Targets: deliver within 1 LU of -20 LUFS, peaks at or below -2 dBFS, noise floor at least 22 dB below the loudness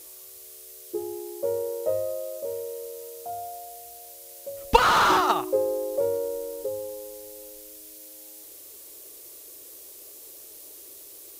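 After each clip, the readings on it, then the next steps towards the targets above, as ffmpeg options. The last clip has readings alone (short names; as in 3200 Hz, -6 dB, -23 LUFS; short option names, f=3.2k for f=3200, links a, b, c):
noise floor -46 dBFS; noise floor target -49 dBFS; loudness -26.5 LUFS; peak -3.5 dBFS; loudness target -20.0 LUFS
-> -af "afftdn=nr=6:nf=-46"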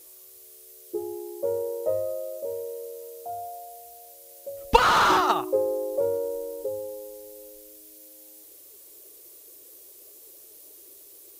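noise floor -49 dBFS; loudness -26.5 LUFS; peak -3.5 dBFS; loudness target -20.0 LUFS
-> -af "volume=6.5dB,alimiter=limit=-2dB:level=0:latency=1"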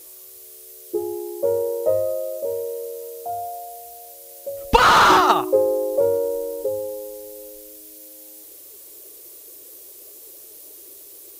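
loudness -20.5 LUFS; peak -2.0 dBFS; noise floor -43 dBFS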